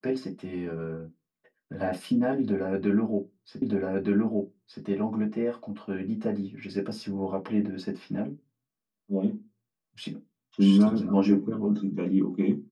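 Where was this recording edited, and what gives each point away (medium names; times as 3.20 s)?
3.62 s: repeat of the last 1.22 s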